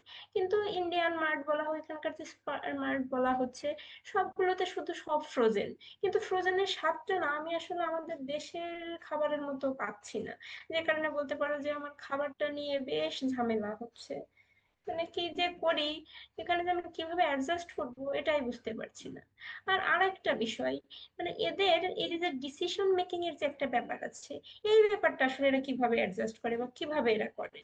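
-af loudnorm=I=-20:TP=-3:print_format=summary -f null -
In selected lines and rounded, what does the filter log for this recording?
Input Integrated:    -32.9 LUFS
Input True Peak:     -15.6 dBTP
Input LRA:             4.8 LU
Input Threshold:     -43.2 LUFS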